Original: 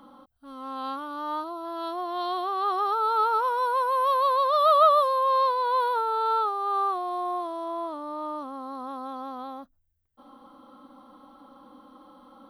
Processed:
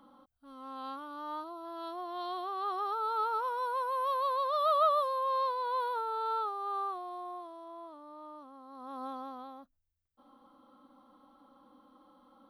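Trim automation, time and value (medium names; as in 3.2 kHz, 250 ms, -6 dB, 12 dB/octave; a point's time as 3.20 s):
6.67 s -8.5 dB
7.64 s -15 dB
8.67 s -15 dB
9.04 s -3.5 dB
9.53 s -10 dB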